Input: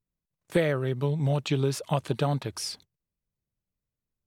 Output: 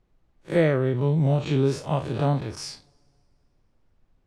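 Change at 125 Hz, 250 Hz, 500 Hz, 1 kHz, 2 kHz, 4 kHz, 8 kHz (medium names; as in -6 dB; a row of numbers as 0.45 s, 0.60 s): +4.0 dB, +5.0 dB, +4.0 dB, +2.5 dB, +1.5 dB, -2.0 dB, -3.0 dB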